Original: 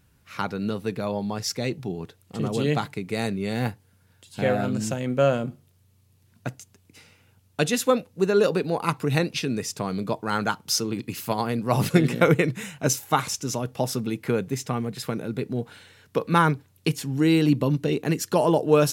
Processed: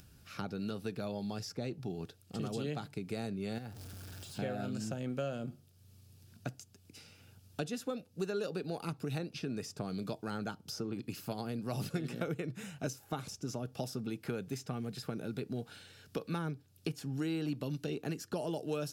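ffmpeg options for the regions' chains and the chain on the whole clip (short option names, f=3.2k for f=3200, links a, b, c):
-filter_complex "[0:a]asettb=1/sr,asplit=3[a][b][c];[a]atrim=end=3.584[d];[b]atrim=start=3.58:end=4.39,asetpts=PTS-STARTPTS,afade=t=in:d=0.004:c=qsin,afade=t=out:st=0.806:d=0.004:c=qsin,aeval=exprs='val(0)+0.5*0.0126*sgn(val(0))':c=same,acompressor=threshold=-38dB:ratio=2.5:attack=3.2:release=140:knee=1:detection=peak[e];[c]atrim=start=4.386[f];[d][e]acrossfade=d=0.004:c1=hsin:c2=qsin[g];[g][f]acrossfade=d=0.004:c1=qsin:c2=hsin,acrossover=split=690|1700[h][i][j];[h]acompressor=threshold=-32dB:ratio=4[k];[i]acompressor=threshold=-41dB:ratio=4[l];[j]acompressor=threshold=-46dB:ratio=4[m];[k][l][m]amix=inputs=3:normalize=0,equalizer=f=500:t=o:w=0.33:g=-3,equalizer=f=1k:t=o:w=0.33:g=-10,equalizer=f=2k:t=o:w=0.33:g=-8,equalizer=f=5k:t=o:w=0.33:g=5,acompressor=mode=upward:threshold=-47dB:ratio=2.5,volume=-4dB"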